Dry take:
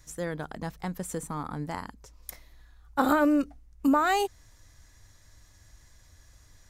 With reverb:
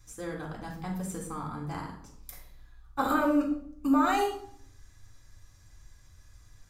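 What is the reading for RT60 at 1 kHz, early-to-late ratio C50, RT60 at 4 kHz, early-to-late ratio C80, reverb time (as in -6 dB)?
0.60 s, 6.5 dB, 0.45 s, 10.0 dB, 0.65 s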